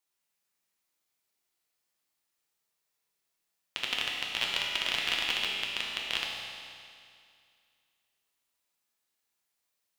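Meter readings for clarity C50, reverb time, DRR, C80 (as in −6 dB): 0.0 dB, 2.3 s, −2.5 dB, 1.5 dB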